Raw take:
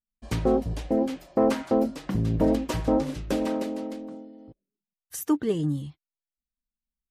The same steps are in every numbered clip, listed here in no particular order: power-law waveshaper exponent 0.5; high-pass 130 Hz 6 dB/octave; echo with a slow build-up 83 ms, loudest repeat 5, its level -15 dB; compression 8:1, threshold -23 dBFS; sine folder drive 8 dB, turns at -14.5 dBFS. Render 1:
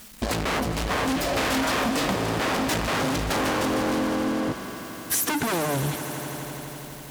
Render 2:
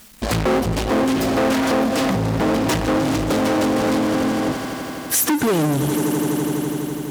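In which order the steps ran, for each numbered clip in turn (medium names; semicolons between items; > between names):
power-law waveshaper > sine folder > high-pass > compression > echo with a slow build-up; power-law waveshaper > echo with a slow build-up > compression > sine folder > high-pass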